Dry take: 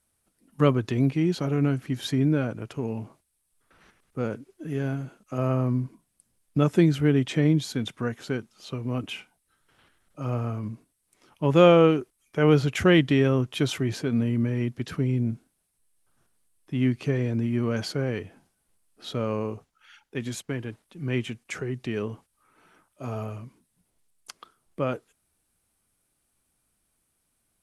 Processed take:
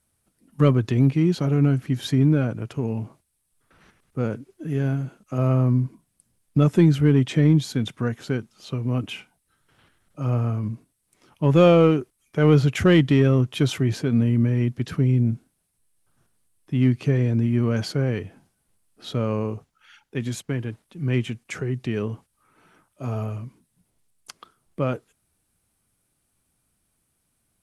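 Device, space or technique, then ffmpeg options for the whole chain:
parallel distortion: -filter_complex "[0:a]asplit=2[link_01][link_02];[link_02]asoftclip=type=hard:threshold=-16.5dB,volume=-5.5dB[link_03];[link_01][link_03]amix=inputs=2:normalize=0,equalizer=frequency=120:width_type=o:width=1.9:gain=5.5,volume=-2.5dB"

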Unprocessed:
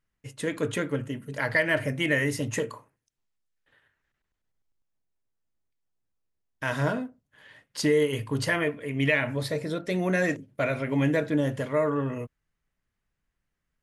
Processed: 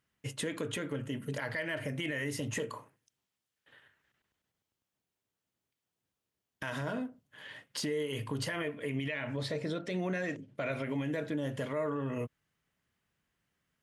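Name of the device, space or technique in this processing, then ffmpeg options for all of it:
broadcast voice chain: -filter_complex "[0:a]asettb=1/sr,asplit=3[link_01][link_02][link_03];[link_01]atrim=end=9.094[link_04];[link_02]atrim=start=9.09:end=10.72,asetpts=PTS-STARTPTS,afade=type=in:duration=0.004:curve=qsin,afade=type=out:start_time=1.626:duration=0.004:curve=qsin,lowpass=7000[link_05];[link_03]atrim=start=10.716[link_06];[link_04][link_05]acrossfade=duration=0.004:curve1=hsin:curve2=qsin[link_07];[link_07][link_06]acrossfade=duration=0.004:curve1=qsin:curve2=hsin,highpass=96,deesser=0.55,acompressor=threshold=-35dB:ratio=4,equalizer=frequency=3100:width_type=o:width=0.36:gain=4,alimiter=level_in=5dB:limit=-24dB:level=0:latency=1:release=37,volume=-5dB,volume=3.5dB"

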